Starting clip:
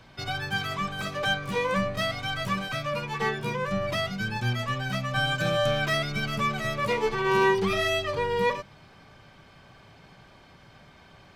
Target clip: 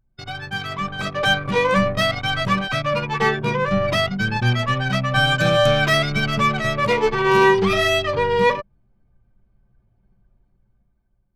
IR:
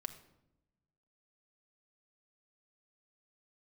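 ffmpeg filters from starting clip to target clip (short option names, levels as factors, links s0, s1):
-af "anlmdn=6.31,dynaudnorm=f=260:g=7:m=2.82"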